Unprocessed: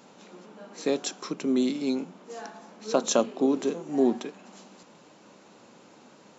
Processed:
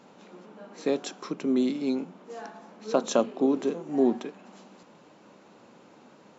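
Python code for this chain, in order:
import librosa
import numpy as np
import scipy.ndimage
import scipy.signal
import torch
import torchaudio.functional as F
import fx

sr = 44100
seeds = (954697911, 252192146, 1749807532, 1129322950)

y = fx.high_shelf(x, sr, hz=4600.0, db=-10.5)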